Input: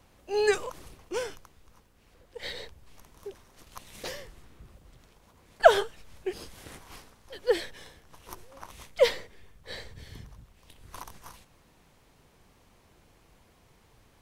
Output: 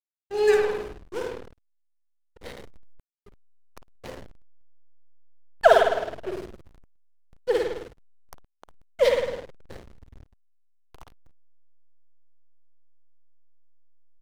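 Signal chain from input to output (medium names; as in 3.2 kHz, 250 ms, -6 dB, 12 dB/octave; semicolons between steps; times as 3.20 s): frequency-shifting echo 293 ms, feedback 58%, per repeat -47 Hz, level -22 dB; spring tank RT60 1.2 s, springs 52 ms, chirp 75 ms, DRR -1.5 dB; hysteresis with a dead band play -27 dBFS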